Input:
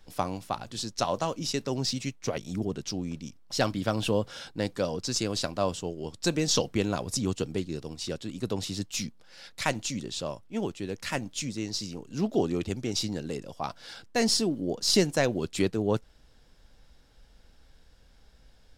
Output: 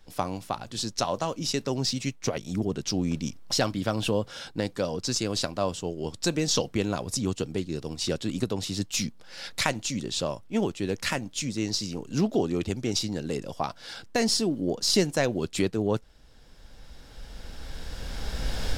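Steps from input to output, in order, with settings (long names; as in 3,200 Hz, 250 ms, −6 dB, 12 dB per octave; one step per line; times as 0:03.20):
camcorder AGC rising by 11 dB per second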